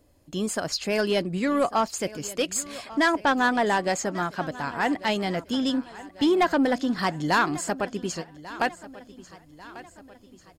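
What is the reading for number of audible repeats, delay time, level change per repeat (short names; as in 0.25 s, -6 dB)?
3, 1.143 s, -6.0 dB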